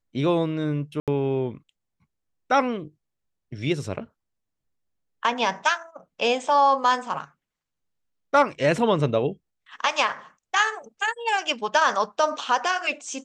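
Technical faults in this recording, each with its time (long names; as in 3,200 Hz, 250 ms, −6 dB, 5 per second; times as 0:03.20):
0:01.00–0:01.08: drop-out 77 ms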